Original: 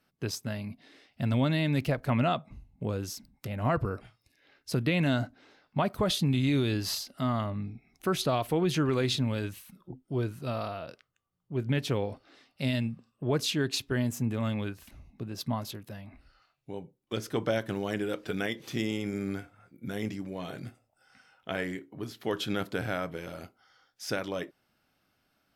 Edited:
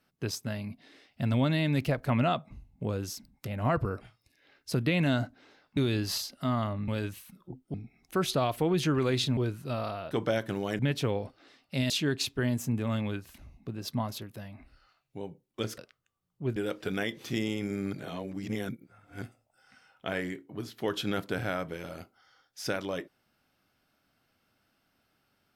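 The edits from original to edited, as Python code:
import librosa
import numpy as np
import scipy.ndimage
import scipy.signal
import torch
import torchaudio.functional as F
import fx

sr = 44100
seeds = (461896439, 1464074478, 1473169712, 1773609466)

y = fx.edit(x, sr, fx.cut(start_s=5.77, length_s=0.77),
    fx.move(start_s=9.28, length_s=0.86, to_s=7.65),
    fx.swap(start_s=10.88, length_s=0.78, other_s=17.31, other_length_s=0.68),
    fx.cut(start_s=12.77, length_s=0.66),
    fx.reverse_span(start_s=19.36, length_s=1.29), tone=tone)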